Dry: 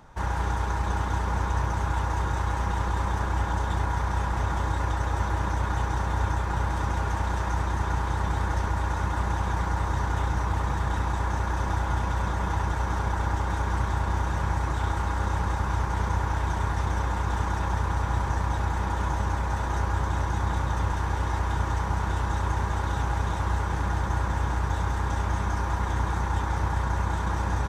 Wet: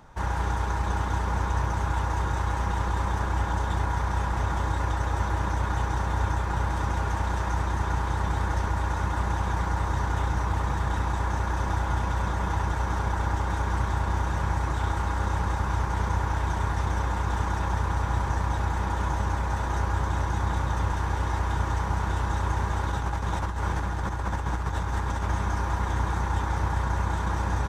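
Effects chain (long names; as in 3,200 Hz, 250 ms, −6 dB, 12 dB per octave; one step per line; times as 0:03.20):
0:22.86–0:25.31: compressor whose output falls as the input rises −27 dBFS, ratio −0.5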